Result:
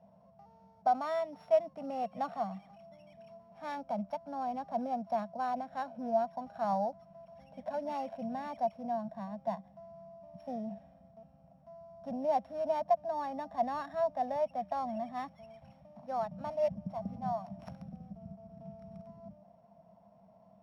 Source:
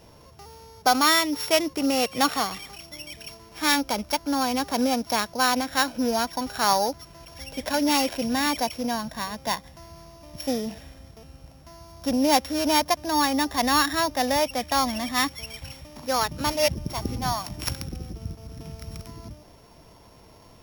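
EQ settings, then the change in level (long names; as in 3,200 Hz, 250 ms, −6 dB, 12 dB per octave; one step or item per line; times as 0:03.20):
pair of resonant band-passes 360 Hz, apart 1.8 octaves
0.0 dB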